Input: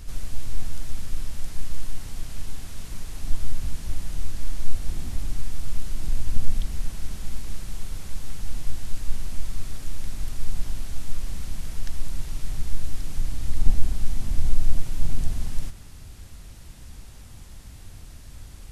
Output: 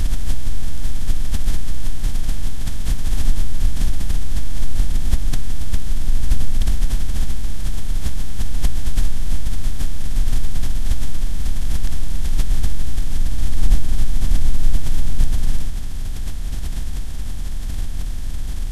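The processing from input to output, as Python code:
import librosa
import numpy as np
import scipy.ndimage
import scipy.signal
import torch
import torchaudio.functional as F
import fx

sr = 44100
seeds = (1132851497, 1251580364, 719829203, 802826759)

y = fx.bin_compress(x, sr, power=0.4)
y = fx.pre_swell(y, sr, db_per_s=24.0)
y = y * librosa.db_to_amplitude(-1.5)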